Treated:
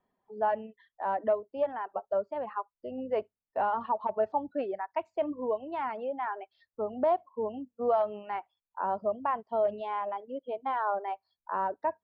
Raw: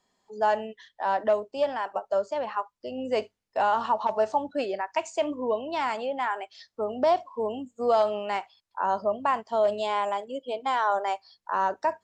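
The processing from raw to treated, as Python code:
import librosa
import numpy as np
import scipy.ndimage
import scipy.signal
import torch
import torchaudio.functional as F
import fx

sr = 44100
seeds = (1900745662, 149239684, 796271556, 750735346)

y = fx.high_shelf(x, sr, hz=2900.0, db=-10.0)
y = fx.dereverb_blind(y, sr, rt60_s=0.97)
y = fx.air_absorb(y, sr, metres=430.0)
y = y * 10.0 ** (-1.5 / 20.0)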